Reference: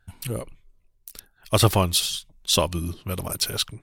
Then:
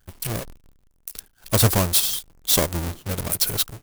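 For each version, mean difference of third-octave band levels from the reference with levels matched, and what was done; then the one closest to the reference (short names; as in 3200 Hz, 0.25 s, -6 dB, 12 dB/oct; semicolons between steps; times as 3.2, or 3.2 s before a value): 5.5 dB: half-waves squared off; dynamic EQ 3100 Hz, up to -4 dB, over -31 dBFS, Q 0.83; in parallel at -8.5 dB: overloaded stage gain 20 dB; on the sum: high shelf 6200 Hz +11 dB; gain -6.5 dB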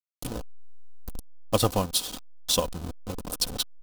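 7.5 dB: level-crossing sampler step -22.5 dBFS; bell 2000 Hz -11 dB 0.86 oct; comb 4 ms, depth 47%; transient shaper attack +5 dB, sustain -3 dB; gain -6 dB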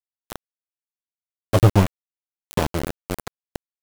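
14.5 dB: tilt shelf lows +8 dB, about 910 Hz; in parallel at -0.5 dB: compressor 8:1, threshold -28 dBFS, peak gain reduction 22 dB; on the sum: flange 0.54 Hz, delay 9.6 ms, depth 3.8 ms, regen +36%; sample gate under -16 dBFS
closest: first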